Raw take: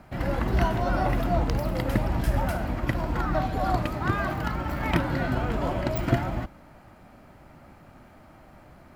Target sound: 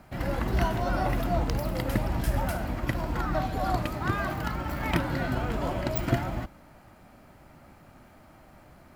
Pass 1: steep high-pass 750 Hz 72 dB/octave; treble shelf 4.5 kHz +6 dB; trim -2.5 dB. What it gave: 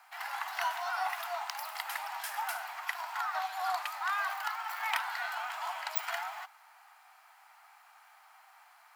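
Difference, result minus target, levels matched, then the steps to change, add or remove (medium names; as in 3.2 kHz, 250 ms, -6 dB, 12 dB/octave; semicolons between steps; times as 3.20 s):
1 kHz band +4.5 dB
remove: steep high-pass 750 Hz 72 dB/octave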